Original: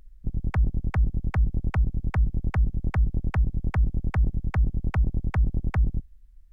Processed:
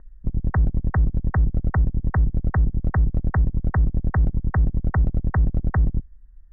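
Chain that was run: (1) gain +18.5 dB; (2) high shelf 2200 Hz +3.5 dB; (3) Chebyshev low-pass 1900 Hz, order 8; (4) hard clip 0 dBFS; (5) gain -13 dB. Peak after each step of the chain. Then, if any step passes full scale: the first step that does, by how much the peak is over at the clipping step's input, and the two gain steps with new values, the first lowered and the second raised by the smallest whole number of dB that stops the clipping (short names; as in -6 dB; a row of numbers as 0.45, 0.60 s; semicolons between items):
+5.0, +5.0, +4.0, 0.0, -13.0 dBFS; step 1, 4.0 dB; step 1 +14.5 dB, step 5 -9 dB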